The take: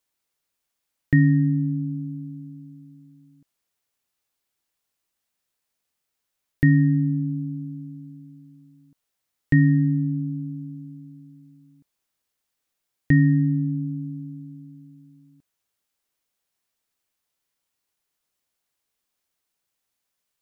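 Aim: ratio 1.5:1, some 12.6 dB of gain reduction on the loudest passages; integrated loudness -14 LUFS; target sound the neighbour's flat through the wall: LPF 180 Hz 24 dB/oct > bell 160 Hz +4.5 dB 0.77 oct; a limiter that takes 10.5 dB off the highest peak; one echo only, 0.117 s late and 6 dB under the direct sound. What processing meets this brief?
compressor 1.5:1, threshold -49 dBFS; limiter -27.5 dBFS; LPF 180 Hz 24 dB/oct; bell 160 Hz +4.5 dB 0.77 oct; echo 0.117 s -6 dB; gain +23 dB

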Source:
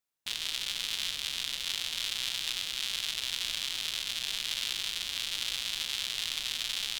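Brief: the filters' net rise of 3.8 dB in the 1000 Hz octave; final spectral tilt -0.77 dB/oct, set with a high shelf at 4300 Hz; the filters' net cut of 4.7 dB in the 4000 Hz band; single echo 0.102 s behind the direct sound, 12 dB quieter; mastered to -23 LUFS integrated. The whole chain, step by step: bell 1000 Hz +5.5 dB; bell 4000 Hz -3.5 dB; high shelf 4300 Hz -5.5 dB; echo 0.102 s -12 dB; gain +12.5 dB

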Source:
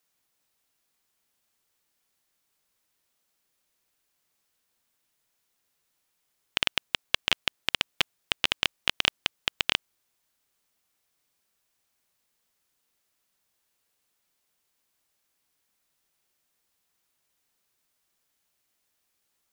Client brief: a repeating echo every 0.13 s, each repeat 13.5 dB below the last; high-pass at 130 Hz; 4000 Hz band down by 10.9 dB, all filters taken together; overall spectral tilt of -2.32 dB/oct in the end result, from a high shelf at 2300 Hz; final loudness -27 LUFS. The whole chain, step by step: HPF 130 Hz; high shelf 2300 Hz -8.5 dB; bell 4000 Hz -8 dB; feedback echo 0.13 s, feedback 21%, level -13.5 dB; gain +9 dB

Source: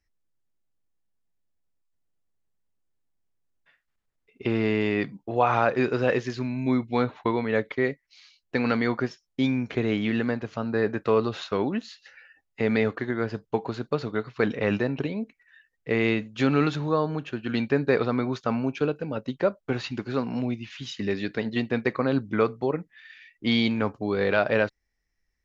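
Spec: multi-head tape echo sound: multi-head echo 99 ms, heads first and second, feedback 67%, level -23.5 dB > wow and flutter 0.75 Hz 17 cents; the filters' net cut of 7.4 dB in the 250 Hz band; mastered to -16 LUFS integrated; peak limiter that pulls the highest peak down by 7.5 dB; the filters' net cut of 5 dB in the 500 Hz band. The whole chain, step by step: bell 250 Hz -8 dB; bell 500 Hz -3.5 dB; limiter -17 dBFS; multi-head echo 99 ms, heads first and second, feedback 67%, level -23.5 dB; wow and flutter 0.75 Hz 17 cents; gain +16 dB

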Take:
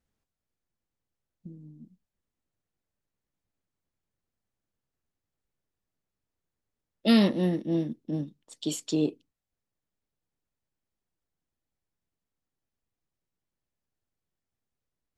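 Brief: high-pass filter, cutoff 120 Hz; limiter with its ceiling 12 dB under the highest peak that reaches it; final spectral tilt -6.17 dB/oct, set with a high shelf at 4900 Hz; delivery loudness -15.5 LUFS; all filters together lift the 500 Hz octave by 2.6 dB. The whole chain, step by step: HPF 120 Hz; bell 500 Hz +3.5 dB; high shelf 4900 Hz -5.5 dB; gain +16.5 dB; limiter -5 dBFS

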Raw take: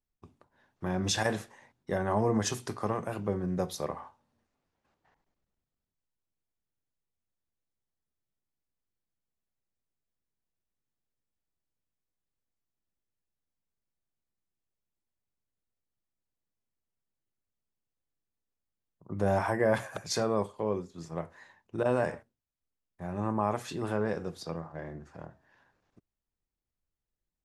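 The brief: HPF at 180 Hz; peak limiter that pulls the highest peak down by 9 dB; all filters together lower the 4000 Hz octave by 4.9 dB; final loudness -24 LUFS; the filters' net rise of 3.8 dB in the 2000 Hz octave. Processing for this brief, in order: HPF 180 Hz; bell 2000 Hz +6.5 dB; bell 4000 Hz -8 dB; gain +11.5 dB; limiter -11 dBFS

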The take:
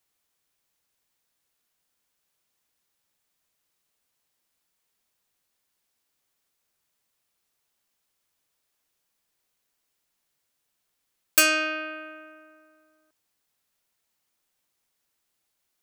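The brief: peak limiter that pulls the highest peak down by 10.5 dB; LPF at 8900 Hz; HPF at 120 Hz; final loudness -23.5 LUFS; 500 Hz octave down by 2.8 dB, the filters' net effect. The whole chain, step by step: HPF 120 Hz; LPF 8900 Hz; bell 500 Hz -4 dB; gain +6.5 dB; limiter -12 dBFS

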